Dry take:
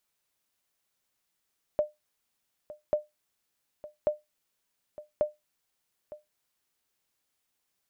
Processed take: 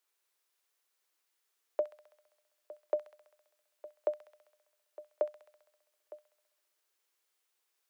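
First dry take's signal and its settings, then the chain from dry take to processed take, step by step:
sonar ping 602 Hz, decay 0.18 s, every 1.14 s, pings 4, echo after 0.91 s, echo -17.5 dB -17 dBFS
rippled Chebyshev high-pass 320 Hz, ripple 3 dB; thin delay 66 ms, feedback 71%, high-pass 2000 Hz, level -5 dB

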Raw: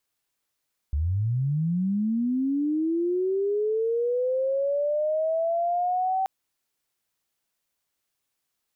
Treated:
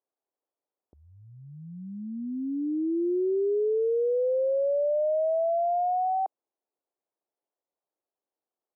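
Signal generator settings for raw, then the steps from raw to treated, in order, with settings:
chirp linear 68 Hz -> 770 Hz -22 dBFS -> -22 dBFS 5.33 s
Butterworth band-pass 510 Hz, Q 0.95

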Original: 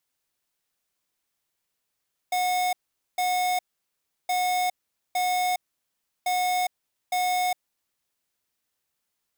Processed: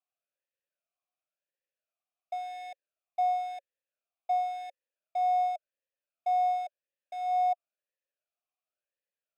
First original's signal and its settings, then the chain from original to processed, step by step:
beep pattern square 728 Hz, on 0.41 s, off 0.45 s, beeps 2, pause 0.70 s, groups 3, -24.5 dBFS
vowel sweep a-e 0.94 Hz

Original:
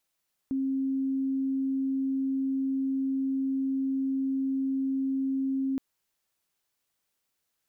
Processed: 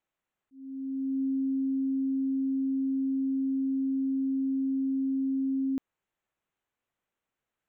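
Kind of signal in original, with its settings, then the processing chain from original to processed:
tone sine 268 Hz -25.5 dBFS 5.27 s
Wiener smoothing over 9 samples; auto swell 0.715 s

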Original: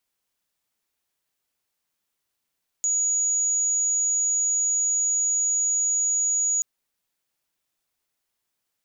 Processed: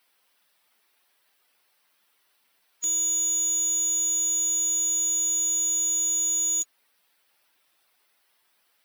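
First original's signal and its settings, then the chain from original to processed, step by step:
tone sine 6810 Hz -20 dBFS 3.78 s
per-bin expansion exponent 1.5; overdrive pedal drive 36 dB, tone 6400 Hz, clips at -20 dBFS

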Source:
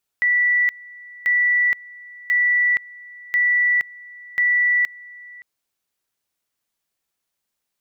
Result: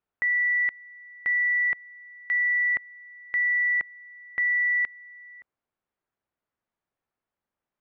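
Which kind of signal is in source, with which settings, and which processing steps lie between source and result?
two-level tone 1960 Hz -14.5 dBFS, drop 23 dB, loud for 0.47 s, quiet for 0.57 s, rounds 5
LPF 1500 Hz 12 dB/oct

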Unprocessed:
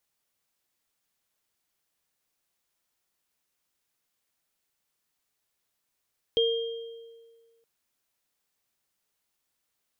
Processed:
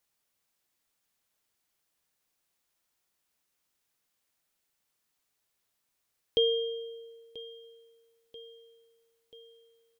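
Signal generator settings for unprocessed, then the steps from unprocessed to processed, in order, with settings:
sine partials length 1.27 s, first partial 460 Hz, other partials 3210 Hz, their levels -3 dB, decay 1.68 s, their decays 1.12 s, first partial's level -20.5 dB
feedback echo 0.986 s, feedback 58%, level -18 dB

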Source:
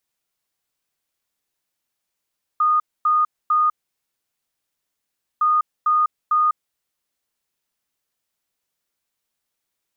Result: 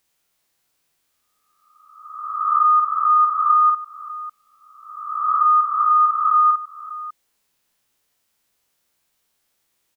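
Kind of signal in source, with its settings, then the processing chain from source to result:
beep pattern sine 1230 Hz, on 0.20 s, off 0.25 s, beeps 3, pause 1.71 s, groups 2, -14 dBFS
spectral swells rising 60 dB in 1.19 s; in parallel at -2 dB: compressor, threshold -27 dBFS; on the sum: tapped delay 49/597 ms -5/-15.5 dB

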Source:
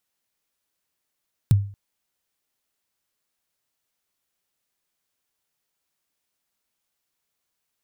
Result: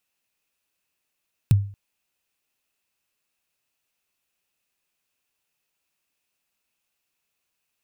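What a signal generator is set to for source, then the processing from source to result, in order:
kick drum length 0.23 s, from 150 Hz, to 100 Hz, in 20 ms, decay 0.42 s, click on, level -9 dB
bell 2600 Hz +10.5 dB 0.21 oct

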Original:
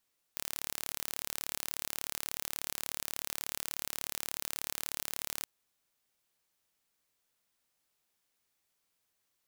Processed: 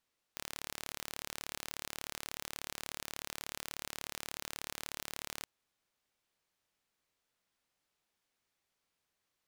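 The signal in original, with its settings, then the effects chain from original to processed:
pulse train 36.5/s, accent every 0, -9 dBFS 5.07 s
high shelf 7400 Hz -11 dB

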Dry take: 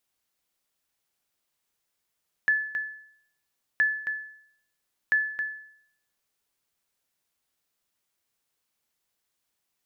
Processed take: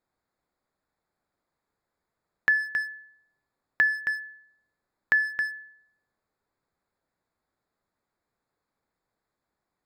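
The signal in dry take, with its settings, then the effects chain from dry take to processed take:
sonar ping 1730 Hz, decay 0.66 s, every 1.32 s, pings 3, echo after 0.27 s, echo -8.5 dB -16 dBFS
Wiener smoothing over 15 samples; dynamic EQ 550 Hz, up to -4 dB, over -46 dBFS, Q 0.81; in parallel at +2 dB: compressor, threshold -33 dBFS

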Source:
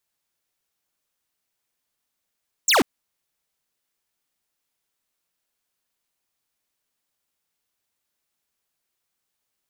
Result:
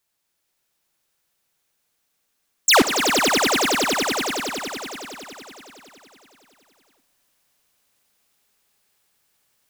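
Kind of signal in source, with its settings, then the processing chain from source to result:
laser zap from 8400 Hz, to 210 Hz, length 0.14 s square, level -16.5 dB
swelling echo 93 ms, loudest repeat 5, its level -8.5 dB; in parallel at -1 dB: vocal rider within 5 dB; on the sum: Schroeder reverb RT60 2.1 s, DRR 18 dB

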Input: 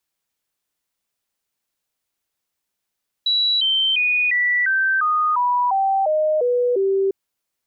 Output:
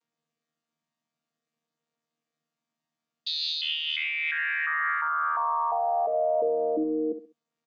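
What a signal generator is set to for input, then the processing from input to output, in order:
stepped sine 3920 Hz down, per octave 3, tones 11, 0.35 s, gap 0.00 s -15.5 dBFS
chord vocoder bare fifth, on D#3; limiter -20 dBFS; feedback echo 66 ms, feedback 28%, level -10.5 dB

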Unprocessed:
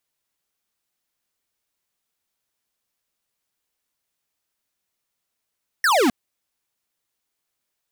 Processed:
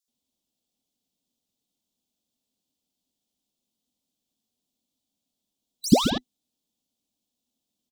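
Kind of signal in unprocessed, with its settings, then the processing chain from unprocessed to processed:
laser zap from 1900 Hz, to 220 Hz, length 0.26 s square, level -17 dB
band inversion scrambler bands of 2000 Hz; EQ curve 130 Hz 0 dB, 250 Hz +14 dB, 360 Hz 0 dB, 740 Hz -2 dB, 1700 Hz -24 dB, 3400 Hz +3 dB, 7300 Hz -1 dB, 10000 Hz -6 dB; bands offset in time highs, lows 80 ms, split 4500 Hz

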